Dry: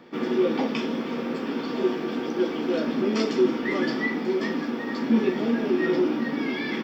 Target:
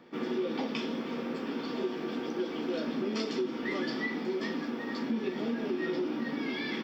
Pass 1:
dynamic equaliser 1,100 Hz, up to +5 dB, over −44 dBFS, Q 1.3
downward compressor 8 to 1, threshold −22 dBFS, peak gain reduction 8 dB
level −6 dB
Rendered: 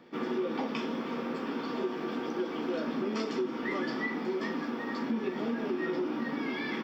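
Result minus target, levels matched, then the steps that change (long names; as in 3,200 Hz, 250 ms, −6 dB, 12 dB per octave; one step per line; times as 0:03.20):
1,000 Hz band +3.5 dB
change: dynamic equaliser 4,100 Hz, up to +5 dB, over −44 dBFS, Q 1.3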